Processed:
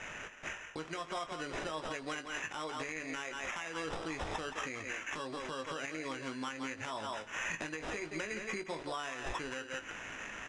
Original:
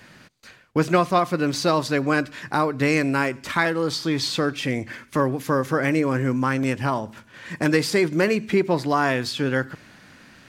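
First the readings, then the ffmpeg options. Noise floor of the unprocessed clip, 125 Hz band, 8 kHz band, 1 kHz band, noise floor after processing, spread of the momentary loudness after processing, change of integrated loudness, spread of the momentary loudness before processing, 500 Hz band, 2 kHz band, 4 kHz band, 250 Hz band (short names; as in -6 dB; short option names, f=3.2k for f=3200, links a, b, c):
-51 dBFS, -24.5 dB, -10.5 dB, -15.5 dB, -50 dBFS, 3 LU, -17.5 dB, 7 LU, -19.0 dB, -12.5 dB, -13.5 dB, -21.5 dB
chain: -filter_complex "[0:a]equalizer=f=3.2k:t=o:w=2.2:g=8,asplit=2[a][b];[b]adelay=170,highpass=300,lowpass=3.4k,asoftclip=type=hard:threshold=-14dB,volume=-8dB[c];[a][c]amix=inputs=2:normalize=0,acrusher=samples=10:mix=1:aa=0.000001,acompressor=threshold=-33dB:ratio=16,asplit=2[d][e];[e]adelay=19,volume=-8dB[f];[d][f]amix=inputs=2:normalize=0,adynamicsmooth=sensitivity=4:basefreq=6.6k,equalizer=f=150:t=o:w=2.2:g=-9.5,alimiter=level_in=5dB:limit=-24dB:level=0:latency=1:release=107,volume=-5dB,aresample=22050,aresample=44100,volume=1dB"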